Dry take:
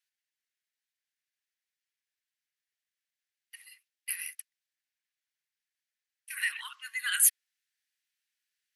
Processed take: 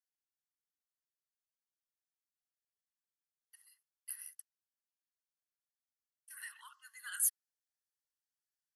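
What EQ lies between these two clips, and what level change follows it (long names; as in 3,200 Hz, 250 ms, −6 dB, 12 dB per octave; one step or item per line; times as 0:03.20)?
phaser with its sweep stopped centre 980 Hz, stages 4
notch filter 3,800 Hz, Q 6.9
−8.5 dB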